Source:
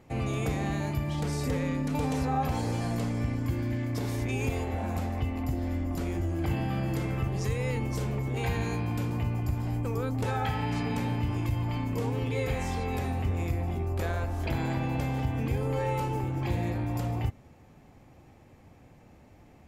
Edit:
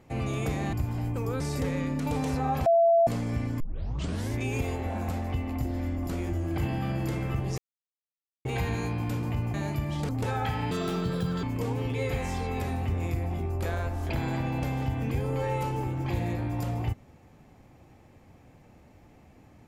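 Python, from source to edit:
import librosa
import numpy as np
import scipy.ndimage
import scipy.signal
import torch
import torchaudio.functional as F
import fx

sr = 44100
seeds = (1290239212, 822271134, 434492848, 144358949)

y = fx.edit(x, sr, fx.swap(start_s=0.73, length_s=0.55, other_s=9.42, other_length_s=0.67),
    fx.bleep(start_s=2.54, length_s=0.41, hz=673.0, db=-17.0),
    fx.tape_start(start_s=3.48, length_s=0.73),
    fx.silence(start_s=7.46, length_s=0.87),
    fx.speed_span(start_s=10.71, length_s=1.09, speed=1.51), tone=tone)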